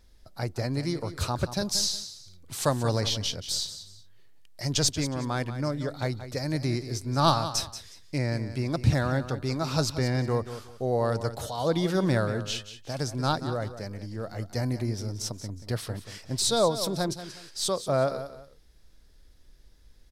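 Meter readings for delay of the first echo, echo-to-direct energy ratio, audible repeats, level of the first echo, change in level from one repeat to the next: 182 ms, −11.5 dB, 2, −12.0 dB, −11.5 dB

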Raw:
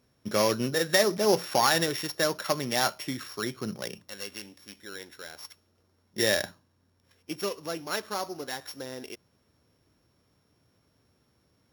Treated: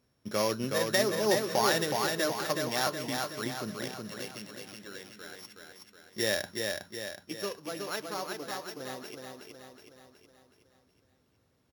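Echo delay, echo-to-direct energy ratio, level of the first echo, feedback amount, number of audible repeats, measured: 370 ms, −2.5 dB, −4.0 dB, 52%, 6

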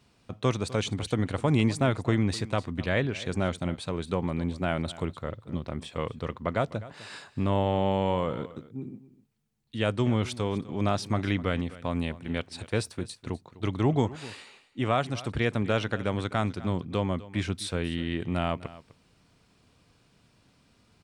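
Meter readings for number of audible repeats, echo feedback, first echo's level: 1, repeats not evenly spaced, −18.0 dB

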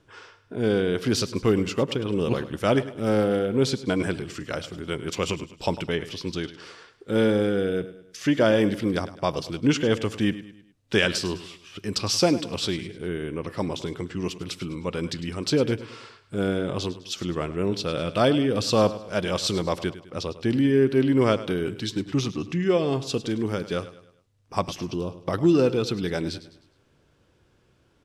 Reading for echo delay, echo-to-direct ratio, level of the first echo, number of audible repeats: 103 ms, −14.0 dB, −15.0 dB, 3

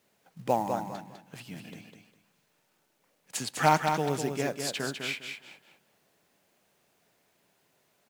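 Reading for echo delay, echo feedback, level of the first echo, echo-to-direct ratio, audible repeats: 202 ms, 25%, −6.0 dB, −5.5 dB, 3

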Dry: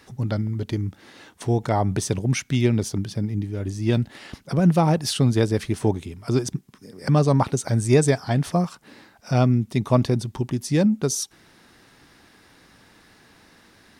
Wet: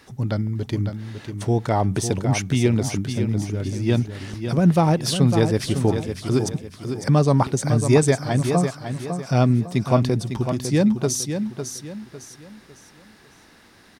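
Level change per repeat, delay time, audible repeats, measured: −9.0 dB, 553 ms, 3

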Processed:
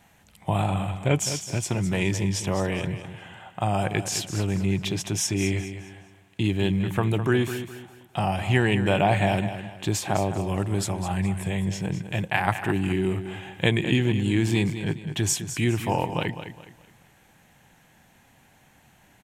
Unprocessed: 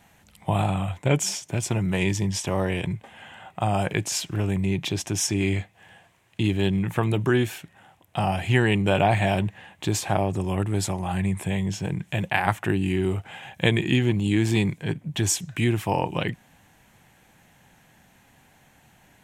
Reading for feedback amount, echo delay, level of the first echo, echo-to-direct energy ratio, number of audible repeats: 33%, 208 ms, −10.5 dB, −10.0 dB, 3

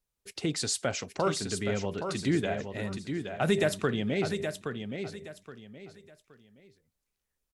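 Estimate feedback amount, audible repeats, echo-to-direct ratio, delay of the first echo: 28%, 3, −6.5 dB, 821 ms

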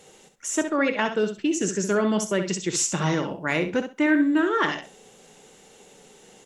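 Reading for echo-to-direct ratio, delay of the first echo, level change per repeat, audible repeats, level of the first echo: −8.5 dB, 65 ms, −15.5 dB, 2, −8.5 dB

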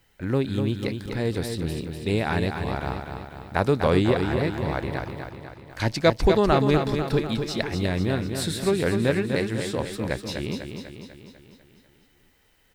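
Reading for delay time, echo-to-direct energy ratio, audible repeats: 248 ms, −5.0 dB, 6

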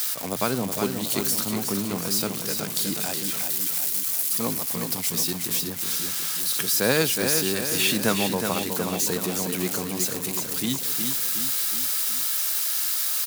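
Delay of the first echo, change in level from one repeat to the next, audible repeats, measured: 367 ms, −5.0 dB, 4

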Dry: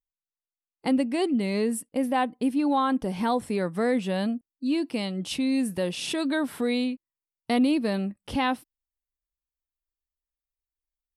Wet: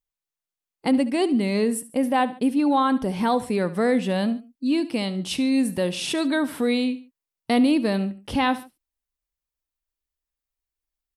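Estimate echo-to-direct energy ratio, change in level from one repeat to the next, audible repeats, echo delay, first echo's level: −16.0 dB, −8.0 dB, 2, 71 ms, −16.5 dB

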